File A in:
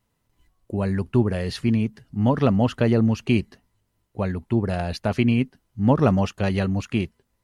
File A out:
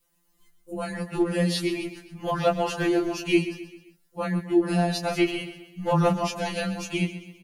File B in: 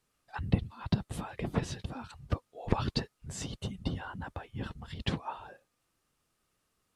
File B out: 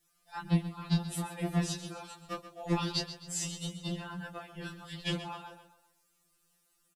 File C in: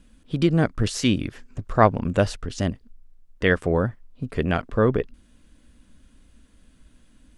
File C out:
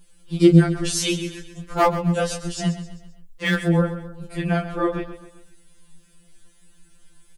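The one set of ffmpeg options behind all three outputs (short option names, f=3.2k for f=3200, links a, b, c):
-af "flanger=delay=17.5:depth=6.9:speed=1.6,aeval=exprs='clip(val(0),-1,0.211)':c=same,crystalizer=i=2:c=0,aecho=1:1:131|262|393|524:0.237|0.107|0.048|0.0216,afftfilt=real='re*2.83*eq(mod(b,8),0)':imag='im*2.83*eq(mod(b,8),0)':win_size=2048:overlap=0.75,volume=4.5dB"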